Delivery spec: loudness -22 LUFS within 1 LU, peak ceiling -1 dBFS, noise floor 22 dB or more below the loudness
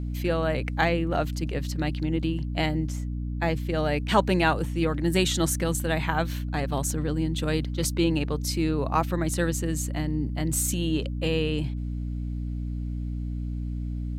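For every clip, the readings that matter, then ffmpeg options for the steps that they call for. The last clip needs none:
hum 60 Hz; harmonics up to 300 Hz; hum level -28 dBFS; loudness -27.0 LUFS; peak -6.5 dBFS; loudness target -22.0 LUFS
-> -af "bandreject=f=60:t=h:w=4,bandreject=f=120:t=h:w=4,bandreject=f=180:t=h:w=4,bandreject=f=240:t=h:w=4,bandreject=f=300:t=h:w=4"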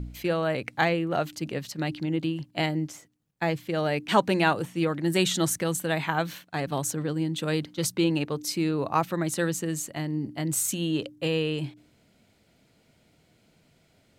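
hum none; loudness -27.5 LUFS; peak -7.5 dBFS; loudness target -22.0 LUFS
-> -af "volume=5.5dB"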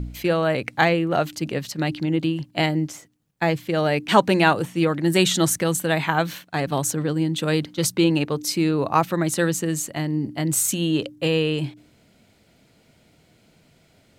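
loudness -22.0 LUFS; peak -2.0 dBFS; noise floor -59 dBFS

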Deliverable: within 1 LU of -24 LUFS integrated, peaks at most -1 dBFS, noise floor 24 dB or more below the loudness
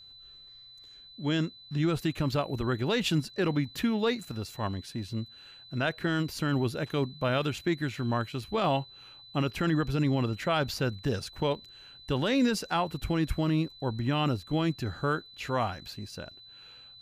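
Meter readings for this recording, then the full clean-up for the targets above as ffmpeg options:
steady tone 4000 Hz; tone level -49 dBFS; loudness -30.0 LUFS; peak -17.0 dBFS; loudness target -24.0 LUFS
-> -af "bandreject=f=4k:w=30"
-af "volume=6dB"

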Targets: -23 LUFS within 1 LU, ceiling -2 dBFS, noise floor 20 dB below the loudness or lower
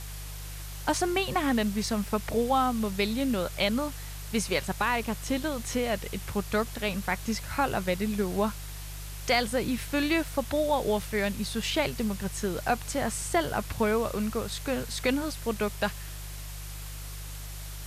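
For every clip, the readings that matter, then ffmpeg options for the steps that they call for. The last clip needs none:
hum 50 Hz; harmonics up to 150 Hz; hum level -37 dBFS; noise floor -39 dBFS; noise floor target -49 dBFS; loudness -29.0 LUFS; peak -15.0 dBFS; loudness target -23.0 LUFS
-> -af "bandreject=f=50:t=h:w=4,bandreject=f=100:t=h:w=4,bandreject=f=150:t=h:w=4"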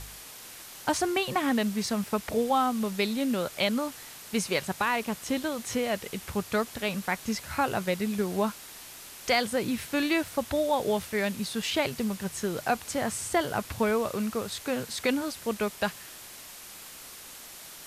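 hum none; noise floor -46 dBFS; noise floor target -49 dBFS
-> -af "afftdn=nr=6:nf=-46"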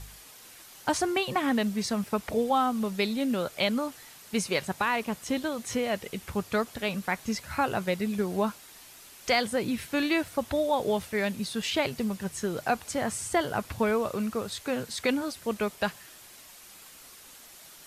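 noise floor -50 dBFS; loudness -29.5 LUFS; peak -15.5 dBFS; loudness target -23.0 LUFS
-> -af "volume=6.5dB"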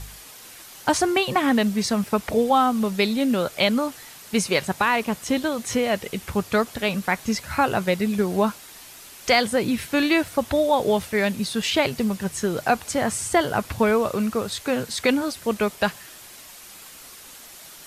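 loudness -23.0 LUFS; peak -9.0 dBFS; noise floor -44 dBFS

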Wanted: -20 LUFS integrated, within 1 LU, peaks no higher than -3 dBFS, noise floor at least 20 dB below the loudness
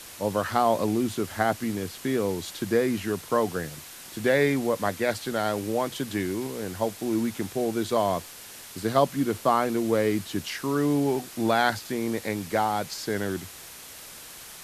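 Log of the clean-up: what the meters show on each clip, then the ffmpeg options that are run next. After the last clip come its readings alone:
noise floor -44 dBFS; noise floor target -47 dBFS; loudness -27.0 LUFS; peak -7.5 dBFS; loudness target -20.0 LUFS
-> -af "afftdn=nr=6:nf=-44"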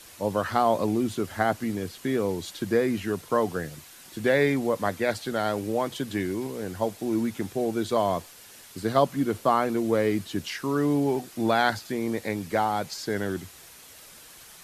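noise floor -49 dBFS; loudness -27.0 LUFS; peak -7.5 dBFS; loudness target -20.0 LUFS
-> -af "volume=7dB,alimiter=limit=-3dB:level=0:latency=1"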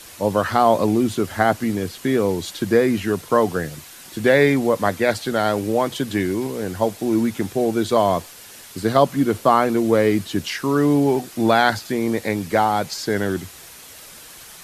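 loudness -20.0 LUFS; peak -3.0 dBFS; noise floor -42 dBFS

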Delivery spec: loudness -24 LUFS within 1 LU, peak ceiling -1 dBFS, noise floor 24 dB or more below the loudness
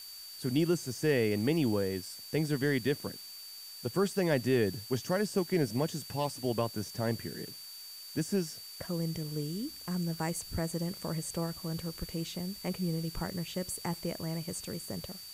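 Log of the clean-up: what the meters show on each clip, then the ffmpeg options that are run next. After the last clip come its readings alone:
steady tone 4600 Hz; tone level -46 dBFS; noise floor -47 dBFS; noise floor target -58 dBFS; loudness -33.5 LUFS; peak -16.5 dBFS; loudness target -24.0 LUFS
-> -af "bandreject=f=4.6k:w=30"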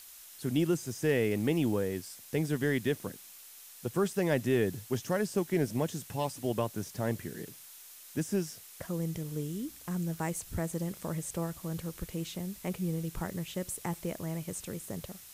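steady tone none; noise floor -51 dBFS; noise floor target -58 dBFS
-> -af "afftdn=nr=7:nf=-51"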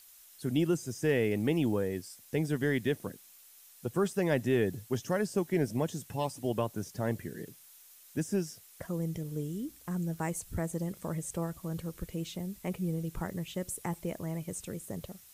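noise floor -57 dBFS; noise floor target -58 dBFS
-> -af "afftdn=nr=6:nf=-57"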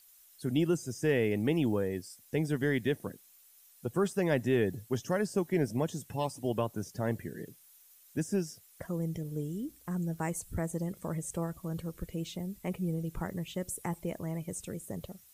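noise floor -60 dBFS; loudness -34.0 LUFS; peak -17.0 dBFS; loudness target -24.0 LUFS
-> -af "volume=10dB"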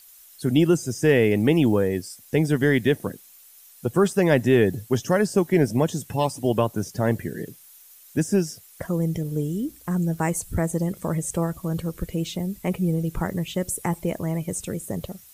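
loudness -24.0 LUFS; peak -7.0 dBFS; noise floor -50 dBFS

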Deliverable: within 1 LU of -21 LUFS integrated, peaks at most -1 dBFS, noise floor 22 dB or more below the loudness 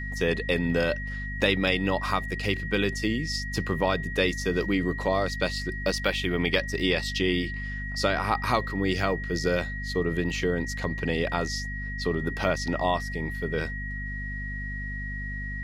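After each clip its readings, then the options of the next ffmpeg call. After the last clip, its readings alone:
hum 50 Hz; harmonics up to 250 Hz; hum level -32 dBFS; steady tone 1900 Hz; tone level -35 dBFS; loudness -27.5 LUFS; peak -8.5 dBFS; loudness target -21.0 LUFS
-> -af "bandreject=f=50:t=h:w=4,bandreject=f=100:t=h:w=4,bandreject=f=150:t=h:w=4,bandreject=f=200:t=h:w=4,bandreject=f=250:t=h:w=4"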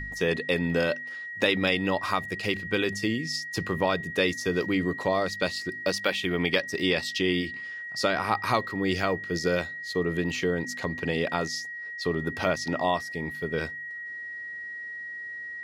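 hum none; steady tone 1900 Hz; tone level -35 dBFS
-> -af "bandreject=f=1.9k:w=30"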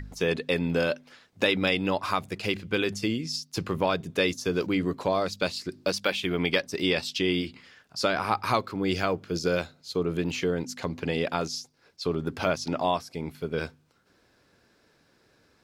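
steady tone none; loudness -28.5 LUFS; peak -9.0 dBFS; loudness target -21.0 LUFS
-> -af "volume=7.5dB"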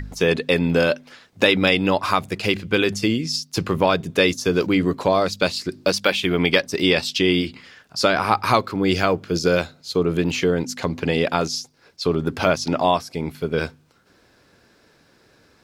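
loudness -21.0 LUFS; peak -1.5 dBFS; noise floor -58 dBFS

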